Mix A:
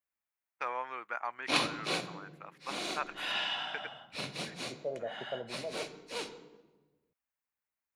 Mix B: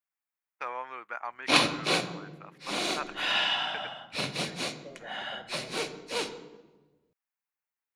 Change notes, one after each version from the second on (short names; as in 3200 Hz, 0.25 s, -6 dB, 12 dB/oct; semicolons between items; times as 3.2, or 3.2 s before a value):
second voice -10.5 dB; background +7.0 dB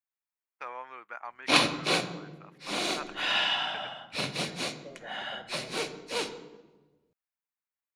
first voice -4.0 dB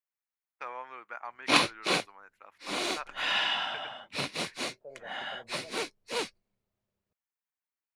reverb: off